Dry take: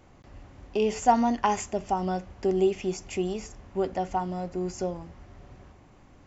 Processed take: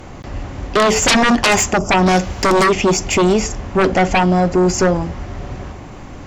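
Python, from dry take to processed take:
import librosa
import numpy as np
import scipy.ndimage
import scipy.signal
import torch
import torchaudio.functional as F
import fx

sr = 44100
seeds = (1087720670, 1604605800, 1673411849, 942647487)

y = fx.spec_box(x, sr, start_s=1.78, length_s=0.2, low_hz=1500.0, high_hz=4800.0, gain_db=-19)
y = fx.high_shelf(y, sr, hz=3000.0, db=11.0, at=(2.06, 2.64))
y = fx.fold_sine(y, sr, drive_db=17, ceiling_db=-9.0)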